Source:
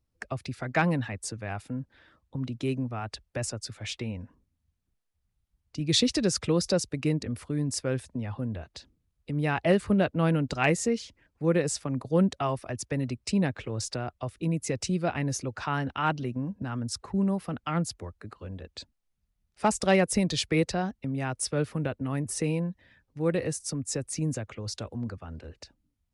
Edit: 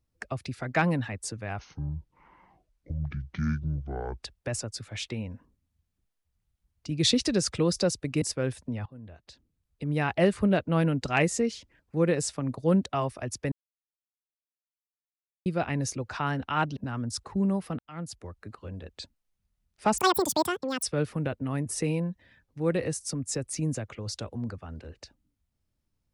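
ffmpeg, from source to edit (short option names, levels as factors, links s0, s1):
-filter_complex "[0:a]asplit=11[s0][s1][s2][s3][s4][s5][s6][s7][s8][s9][s10];[s0]atrim=end=1.594[s11];[s1]atrim=start=1.59:end=3.12,asetpts=PTS-STARTPTS,asetrate=25578,aresample=44100[s12];[s2]atrim=start=3.116:end=7.112[s13];[s3]atrim=start=7.688:end=8.33,asetpts=PTS-STARTPTS,afade=t=out:st=0.638:d=0.004:c=hsin:silence=0.112202[s14];[s4]atrim=start=8.33:end=12.99,asetpts=PTS-STARTPTS,afade=t=in:d=1.08:silence=0.112202,afade=t=out:st=4.656:d=0.004:c=hsin[s15];[s5]atrim=start=12.99:end=14.93,asetpts=PTS-STARTPTS,volume=0[s16];[s6]atrim=start=14.93:end=16.242,asetpts=PTS-STARTPTS,afade=t=in:d=0.004:c=hsin[s17];[s7]atrim=start=16.548:end=17.57,asetpts=PTS-STARTPTS,afade=t=out:st=1.018:d=0.004:c=hsin[s18];[s8]atrim=start=17.57:end=19.764,asetpts=PTS-STARTPTS,afade=t=in:d=0.63[s19];[s9]atrim=start=19.76:end=21.42,asetpts=PTS-STARTPTS,asetrate=86436,aresample=44100[s20];[s10]atrim=start=21.416[s21];[s11][s12]acrossfade=d=0.004:c1=hsin:c2=hsin[s22];[s22][s13]acrossfade=d=0.004:c1=hsin:c2=hsin[s23];[s14][s15][s16][s17]concat=n=4:v=0:a=1[s24];[s23][s24]acrossfade=d=0.004:c1=hsin:c2=hsin[s25];[s18][s19]concat=n=2:v=0:a=1[s26];[s25][s26]acrossfade=d=0.004:c1=hsin:c2=hsin[s27];[s27][s20]acrossfade=d=0.004:c1=hsin:c2=hsin[s28];[s28][s21]acrossfade=d=0.004:c1=hsin:c2=hsin"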